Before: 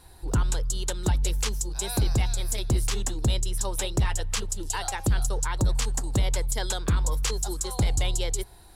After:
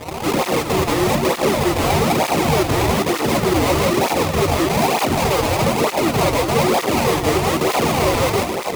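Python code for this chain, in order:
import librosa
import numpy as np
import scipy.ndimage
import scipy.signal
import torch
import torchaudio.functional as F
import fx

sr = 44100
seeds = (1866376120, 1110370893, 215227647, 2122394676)

y = scipy.signal.sosfilt(scipy.signal.butter(2, 370.0, 'highpass', fs=sr, output='sos'), x)
y = fx.peak_eq(y, sr, hz=7100.0, db=-6.5, octaves=1.4)
y = fx.over_compress(y, sr, threshold_db=-42.0, ratio=-1.0, at=(4.16, 5.57))
y = fx.fuzz(y, sr, gain_db=54.0, gate_db=-58.0)
y = fx.sample_hold(y, sr, seeds[0], rate_hz=1600.0, jitter_pct=20)
y = fx.doubler(y, sr, ms=13.0, db=-11.5)
y = y + 10.0 ** (-8.0 / 20.0) * np.pad(y, (int(403 * sr / 1000.0), 0))[:len(y)]
y = fx.flanger_cancel(y, sr, hz=1.1, depth_ms=5.6)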